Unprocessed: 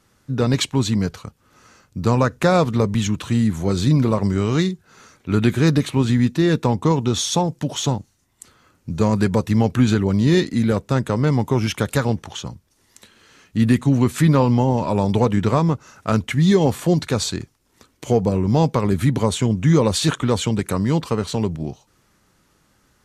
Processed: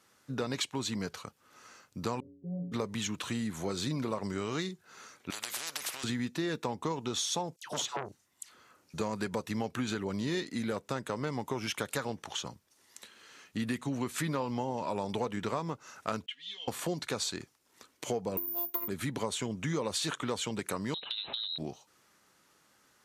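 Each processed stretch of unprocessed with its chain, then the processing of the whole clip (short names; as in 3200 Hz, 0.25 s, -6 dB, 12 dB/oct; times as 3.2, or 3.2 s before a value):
2.2–2.72 inverse Chebyshev low-pass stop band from 1200 Hz, stop band 60 dB + low shelf 160 Hz +7.5 dB + metallic resonator 84 Hz, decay 0.79 s, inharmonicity 0.03
5.3–6.04 compressor, threshold -21 dBFS + spectral compressor 10:1
7.56–8.94 dispersion lows, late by 0.107 s, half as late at 1100 Hz + core saturation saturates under 1200 Hz
16.26–16.68 band-pass 3100 Hz, Q 11 + comb 4.2 ms, depth 90%
18.37–18.88 careless resampling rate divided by 3×, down none, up zero stuff + robotiser 345 Hz + core saturation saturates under 340 Hz
20.94–21.58 inverted band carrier 4000 Hz + compressor 10:1, threshold -27 dBFS
whole clip: HPF 510 Hz 6 dB/oct; compressor 3:1, threshold -29 dBFS; gain -3 dB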